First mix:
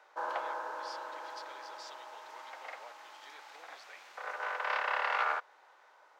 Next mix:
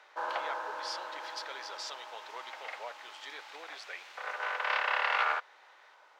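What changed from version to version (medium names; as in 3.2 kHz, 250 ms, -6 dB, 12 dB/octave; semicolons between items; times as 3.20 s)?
speech +9.5 dB; background: add peaking EQ 3.1 kHz +6.5 dB 1.6 oct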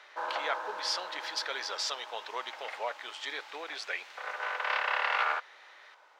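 speech +8.0 dB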